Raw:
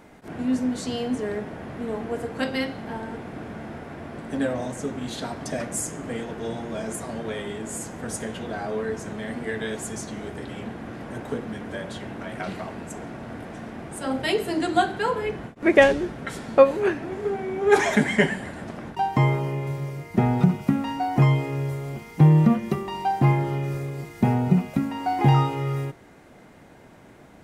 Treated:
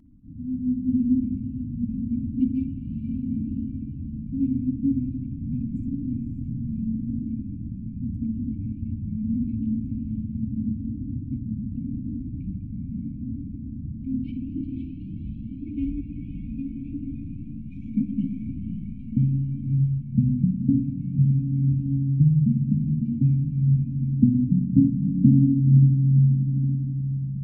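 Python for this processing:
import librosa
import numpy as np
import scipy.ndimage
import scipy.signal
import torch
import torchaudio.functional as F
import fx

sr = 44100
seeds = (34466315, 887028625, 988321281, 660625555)

y = fx.wiener(x, sr, points=41)
y = fx.graphic_eq_15(y, sr, hz=(160, 630, 1600, 4000), db=(-5, -10, 3, -3))
y = fx.rider(y, sr, range_db=4, speed_s=0.5)
y = fx.filter_sweep_lowpass(y, sr, from_hz=490.0, to_hz=190.0, start_s=23.03, end_s=26.1, q=6.0)
y = fx.brickwall_bandstop(y, sr, low_hz=290.0, high_hz=2200.0)
y = fx.echo_diffused(y, sr, ms=542, feedback_pct=44, wet_db=-5.0)
y = fx.rev_spring(y, sr, rt60_s=3.9, pass_ms=(54, 59), chirp_ms=65, drr_db=6.0)
y = fx.comb_cascade(y, sr, direction='rising', hz=0.82)
y = y * librosa.db_to_amplitude(7.5)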